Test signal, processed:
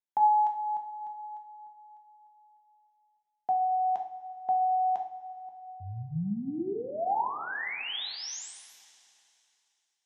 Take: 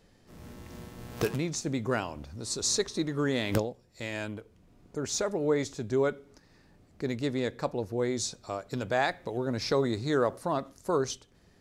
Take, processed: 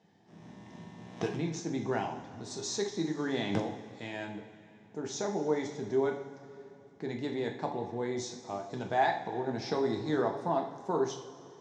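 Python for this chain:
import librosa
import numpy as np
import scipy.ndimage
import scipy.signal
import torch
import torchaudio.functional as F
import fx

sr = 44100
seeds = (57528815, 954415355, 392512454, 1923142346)

y = fx.cabinet(x, sr, low_hz=110.0, low_slope=24, high_hz=5800.0, hz=(550.0, 800.0, 1300.0, 2500.0, 4500.0), db=(-6, 9, -7, -5, -9))
y = fx.rev_double_slope(y, sr, seeds[0], early_s=0.45, late_s=2.8, knee_db=-15, drr_db=2.0)
y = y * 10.0 ** (-4.0 / 20.0)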